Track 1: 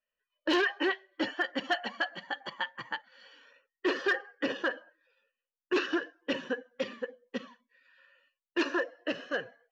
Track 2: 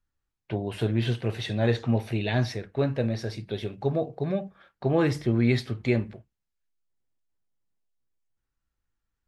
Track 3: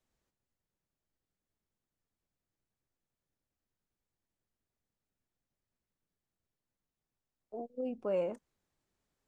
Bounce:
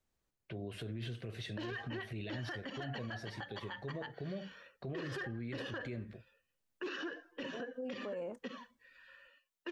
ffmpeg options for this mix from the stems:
-filter_complex "[0:a]acontrast=33,adelay=1100,volume=-2.5dB[a];[1:a]equalizer=f=870:t=o:w=0.29:g=-14,volume=-7.5dB[b];[2:a]volume=-2dB[c];[a][b]amix=inputs=2:normalize=0,acrossover=split=320[d][e];[e]acompressor=threshold=-32dB:ratio=2[f];[d][f]amix=inputs=2:normalize=0,alimiter=level_in=3.5dB:limit=-24dB:level=0:latency=1:release=40,volume=-3.5dB,volume=0dB[g];[c][g]amix=inputs=2:normalize=0,alimiter=level_in=9.5dB:limit=-24dB:level=0:latency=1:release=118,volume=-9.5dB"

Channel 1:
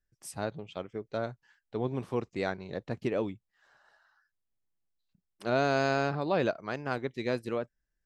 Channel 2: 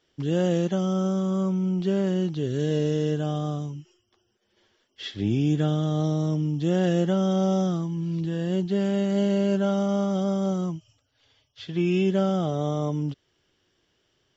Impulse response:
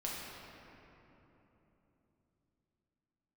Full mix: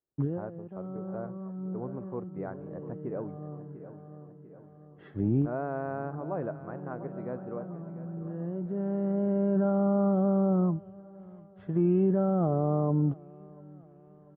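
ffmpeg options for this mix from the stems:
-filter_complex "[0:a]volume=-6dB,asplit=3[a][b][c];[b]volume=-13.5dB[d];[1:a]alimiter=limit=-19.5dB:level=0:latency=1:release=11,volume=2dB,asplit=2[e][f];[f]volume=-24dB[g];[c]apad=whole_len=633399[h];[e][h]sidechaincompress=threshold=-50dB:ratio=6:attack=6.4:release=1480[i];[d][g]amix=inputs=2:normalize=0,aecho=0:1:695|1390|2085|2780|3475|4170|4865|5560:1|0.52|0.27|0.141|0.0731|0.038|0.0198|0.0103[j];[a][i][j]amix=inputs=3:normalize=0,lowpass=f=1.3k:w=0.5412,lowpass=f=1.3k:w=1.3066,agate=range=-25dB:threshold=-59dB:ratio=16:detection=peak"

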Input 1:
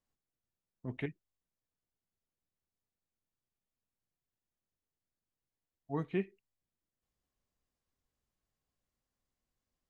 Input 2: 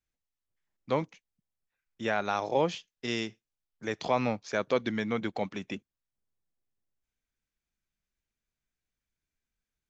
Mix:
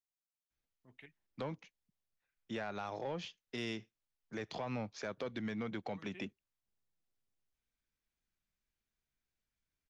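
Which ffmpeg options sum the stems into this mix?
-filter_complex "[0:a]tiltshelf=f=1.1k:g=-9,volume=-16dB[a];[1:a]lowpass=5.8k,adelay=500,volume=-2dB[b];[a][b]amix=inputs=2:normalize=0,acrossover=split=140[c][d];[d]acompressor=threshold=-36dB:ratio=2[e];[c][e]amix=inputs=2:normalize=0,asoftclip=type=tanh:threshold=-27dB,alimiter=level_in=8dB:limit=-24dB:level=0:latency=1:release=86,volume=-8dB"

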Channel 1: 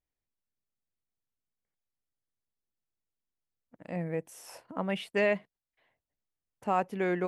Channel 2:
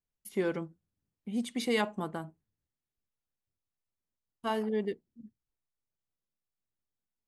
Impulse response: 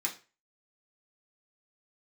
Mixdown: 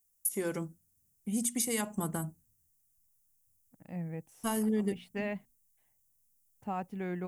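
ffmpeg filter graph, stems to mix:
-filter_complex "[0:a]equalizer=f=800:t=o:w=0.26:g=7,volume=-10dB[a];[1:a]aexciter=amount=8.6:drive=6.5:freq=5.9k,bandreject=f=60:t=h:w=6,bandreject=f=120:t=h:w=6,bandreject=f=180:t=h:w=6,bandreject=f=240:t=h:w=6,acompressor=threshold=-30dB:ratio=5,volume=1dB,asplit=2[b][c];[c]apad=whole_len=320918[d];[a][d]sidechaincompress=threshold=-40dB:ratio=8:attack=16:release=184[e];[e][b]amix=inputs=2:normalize=0,asubboost=boost=4:cutoff=240"

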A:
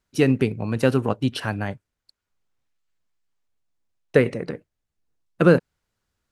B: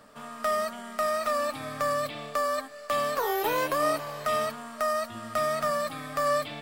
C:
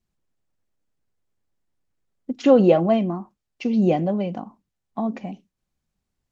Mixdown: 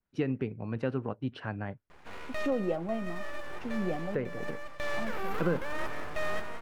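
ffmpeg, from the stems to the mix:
-filter_complex "[0:a]lowpass=2.6k,volume=-8.5dB[a];[1:a]lowpass=f=1.2k:p=1,alimiter=limit=-24dB:level=0:latency=1:release=14,aeval=exprs='abs(val(0))':c=same,adelay=1900,volume=2.5dB,asplit=2[b][c];[c]volume=-10.5dB[d];[2:a]volume=-14.5dB,asplit=2[e][f];[f]apad=whole_len=375698[g];[b][g]sidechaincompress=threshold=-37dB:ratio=8:attack=5.5:release=1470[h];[d]aecho=0:1:178:1[i];[a][h][e][i]amix=inputs=4:normalize=0,adynamicequalizer=threshold=0.00282:dfrequency=4000:dqfactor=0.78:tfrequency=4000:tqfactor=0.78:attack=5:release=100:ratio=0.375:range=2.5:mode=cutabove:tftype=bell,alimiter=limit=-19.5dB:level=0:latency=1:release=441"

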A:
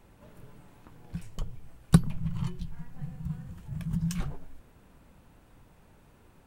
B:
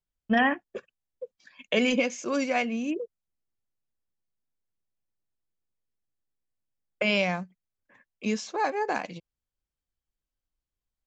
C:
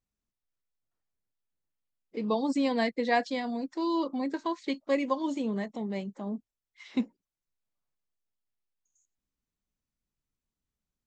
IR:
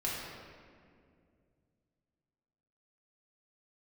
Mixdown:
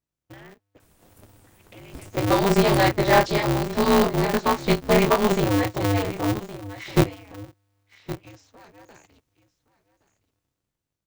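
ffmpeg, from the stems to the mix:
-filter_complex "[0:a]bass=f=250:g=0,treble=f=4k:g=14,adelay=800,volume=-4dB[a];[1:a]acrossover=split=450|2300[b][c][d];[b]acompressor=threshold=-28dB:ratio=4[e];[c]acompressor=threshold=-37dB:ratio=4[f];[d]acompressor=threshold=-41dB:ratio=4[g];[e][f][g]amix=inputs=3:normalize=0,highpass=f=170:w=0.5412,highpass=f=170:w=1.3066,equalizer=f=560:t=o:w=0.78:g=-4.5,volume=-15dB,asplit=2[h][i];[i]volume=-19dB[j];[2:a]dynaudnorm=f=230:g=9:m=12dB,flanger=delay=20:depth=5.2:speed=1.1,volume=2.5dB,asplit=3[k][l][m];[l]volume=-15.5dB[n];[m]apad=whole_len=320554[o];[a][o]sidechaincompress=threshold=-27dB:ratio=8:attack=12:release=265[p];[j][n]amix=inputs=2:normalize=0,aecho=0:1:1117:1[q];[p][h][k][q]amix=inputs=4:normalize=0,asoftclip=type=tanh:threshold=-7dB,aeval=exprs='val(0)*sgn(sin(2*PI*100*n/s))':c=same"

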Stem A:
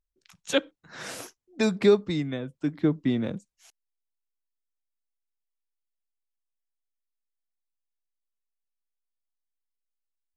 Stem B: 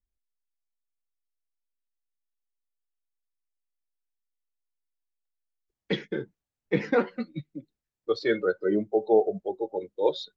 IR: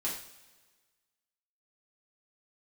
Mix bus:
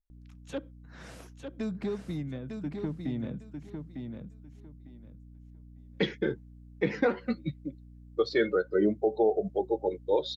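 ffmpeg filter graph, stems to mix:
-filter_complex "[0:a]bass=f=250:g=8,treble=f=4k:g=-6,acrossover=split=1300|3700[a][b][c];[a]acompressor=threshold=-18dB:ratio=4[d];[b]acompressor=threshold=-44dB:ratio=4[e];[c]acompressor=threshold=-45dB:ratio=4[f];[d][e][f]amix=inputs=3:normalize=0,asoftclip=type=tanh:threshold=-15.5dB,volume=-9.5dB,asplit=2[g][h];[h]volume=-6dB[i];[1:a]aeval=exprs='val(0)+0.00282*(sin(2*PI*60*n/s)+sin(2*PI*2*60*n/s)/2+sin(2*PI*3*60*n/s)/3+sin(2*PI*4*60*n/s)/4+sin(2*PI*5*60*n/s)/5)':c=same,adelay=100,volume=2dB[j];[i]aecho=0:1:902|1804|2706:1|0.21|0.0441[k];[g][j][k]amix=inputs=3:normalize=0,alimiter=limit=-15.5dB:level=0:latency=1:release=195"

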